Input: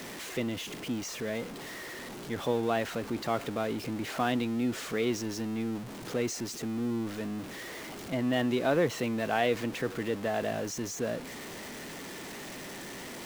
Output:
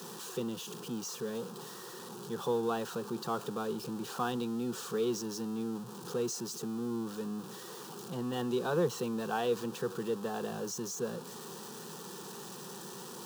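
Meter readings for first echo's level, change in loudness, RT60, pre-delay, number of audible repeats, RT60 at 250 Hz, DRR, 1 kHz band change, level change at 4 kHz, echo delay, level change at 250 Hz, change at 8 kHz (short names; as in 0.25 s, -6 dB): none, -4.0 dB, none, none, none, none, none, -3.5 dB, -4.5 dB, none, -4.5 dB, -1.0 dB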